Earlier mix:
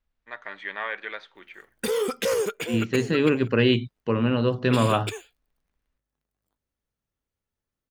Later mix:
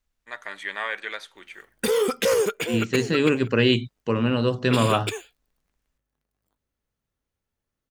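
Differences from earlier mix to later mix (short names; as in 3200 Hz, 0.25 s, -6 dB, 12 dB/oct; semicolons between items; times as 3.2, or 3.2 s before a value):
first voice: remove air absorption 240 m; second voice: remove air absorption 160 m; background +3.5 dB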